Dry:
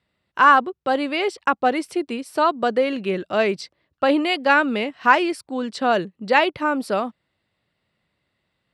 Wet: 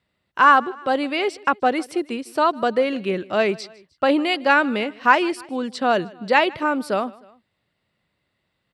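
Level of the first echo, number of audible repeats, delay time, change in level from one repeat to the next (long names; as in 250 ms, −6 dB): −23.0 dB, 2, 154 ms, −5.0 dB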